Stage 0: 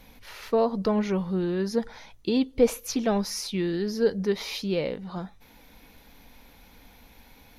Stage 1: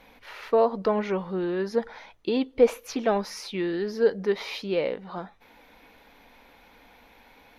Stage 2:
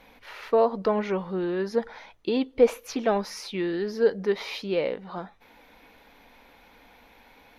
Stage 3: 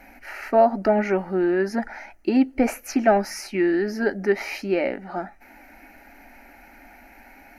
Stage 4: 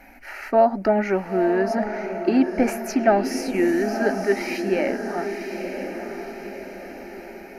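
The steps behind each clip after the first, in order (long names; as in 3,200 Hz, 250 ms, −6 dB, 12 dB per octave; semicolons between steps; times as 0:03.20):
bass and treble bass −13 dB, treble −13 dB; level +3.5 dB
no processing that can be heard
phaser with its sweep stopped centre 710 Hz, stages 8; level +9 dB
feedback delay with all-pass diffusion 987 ms, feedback 51%, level −7 dB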